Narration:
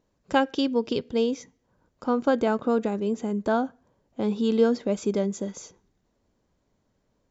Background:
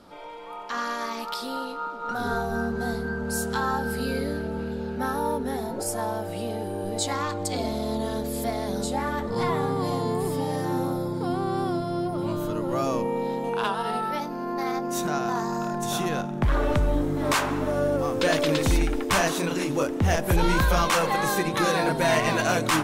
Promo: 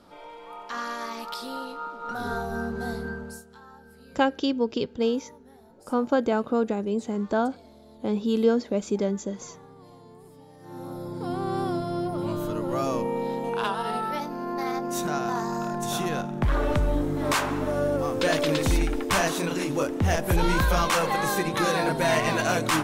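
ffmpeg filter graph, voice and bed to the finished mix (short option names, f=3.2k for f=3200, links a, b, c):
-filter_complex "[0:a]adelay=3850,volume=-0.5dB[a];[1:a]volume=19dB,afade=t=out:st=3.08:d=0.35:silence=0.1,afade=t=in:st=10.59:d=0.96:silence=0.0794328[b];[a][b]amix=inputs=2:normalize=0"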